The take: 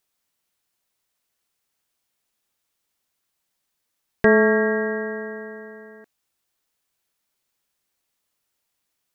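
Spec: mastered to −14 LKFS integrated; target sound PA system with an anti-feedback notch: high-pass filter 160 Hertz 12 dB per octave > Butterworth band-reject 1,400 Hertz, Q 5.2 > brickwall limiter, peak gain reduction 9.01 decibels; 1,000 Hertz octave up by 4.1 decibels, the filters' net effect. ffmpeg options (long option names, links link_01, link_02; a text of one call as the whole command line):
ffmpeg -i in.wav -af "highpass=160,asuperstop=centerf=1400:order=8:qfactor=5.2,equalizer=frequency=1000:width_type=o:gain=5.5,volume=9.5dB,alimiter=limit=-1.5dB:level=0:latency=1" out.wav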